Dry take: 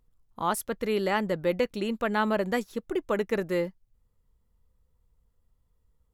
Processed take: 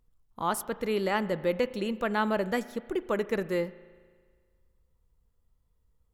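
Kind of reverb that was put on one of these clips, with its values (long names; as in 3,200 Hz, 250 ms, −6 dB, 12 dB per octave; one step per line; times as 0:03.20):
spring reverb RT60 1.7 s, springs 36 ms, chirp 75 ms, DRR 15.5 dB
level −1.5 dB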